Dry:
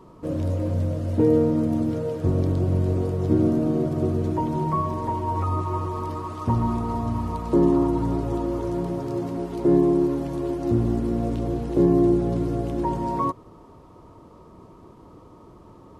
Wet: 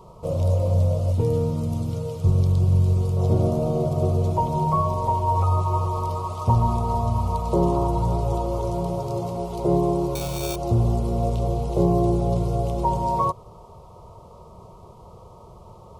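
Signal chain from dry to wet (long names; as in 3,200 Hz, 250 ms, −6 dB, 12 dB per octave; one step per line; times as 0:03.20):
0:01.12–0:03.17: parametric band 620 Hz −12.5 dB 1.1 octaves
0:10.15–0:10.56: sample-rate reduction 2,000 Hz, jitter 0%
phaser with its sweep stopped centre 700 Hz, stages 4
level +6.5 dB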